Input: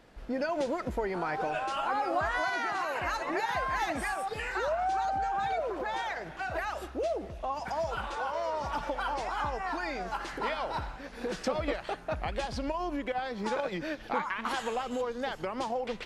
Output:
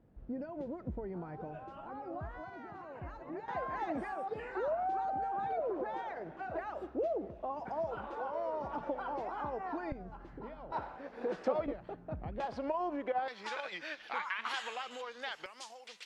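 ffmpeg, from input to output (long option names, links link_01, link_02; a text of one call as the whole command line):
ffmpeg -i in.wav -af "asetnsamples=nb_out_samples=441:pad=0,asendcmd='3.48 bandpass f 340;9.92 bandpass f 100;10.72 bandpass f 560;11.66 bandpass f 160;12.4 bandpass f 650;13.28 bandpass f 2700;15.46 bandpass f 7500',bandpass=frequency=110:width_type=q:width=0.78:csg=0" out.wav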